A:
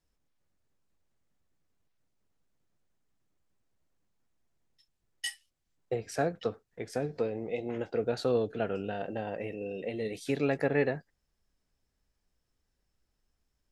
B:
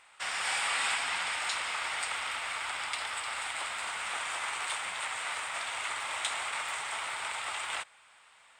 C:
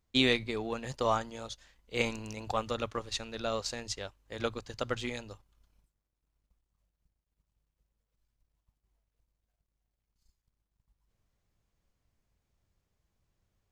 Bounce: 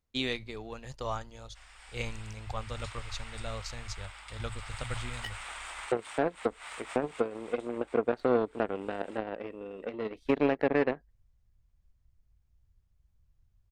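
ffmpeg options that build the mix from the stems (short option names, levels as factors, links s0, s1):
-filter_complex "[0:a]equalizer=f=80:w=1.6:g=9,aeval=exprs='0.2*(cos(1*acos(clip(val(0)/0.2,-1,1)))-cos(1*PI/2))+0.0178*(cos(3*acos(clip(val(0)/0.2,-1,1)))-cos(3*PI/2))+0.0178*(cos(7*acos(clip(val(0)/0.2,-1,1)))-cos(7*PI/2))':c=same,firequalizer=gain_entry='entry(110,0);entry(250,13);entry(7300,-6)':delay=0.05:min_phase=1,volume=0.794,asplit=2[s0][s1];[1:a]adelay=1350,volume=0.447,afade=t=in:st=2.55:d=0.32:silence=0.354813,afade=t=in:st=4.45:d=0.43:silence=0.473151,afade=t=out:st=6.96:d=0.66:silence=0.266073[s2];[2:a]asubboost=boost=10.5:cutoff=100,volume=0.501[s3];[s1]apad=whole_len=438422[s4];[s2][s4]sidechaincompress=threshold=0.00891:ratio=5:attack=12:release=111[s5];[s0][s5][s3]amix=inputs=3:normalize=0,alimiter=limit=0.188:level=0:latency=1:release=281"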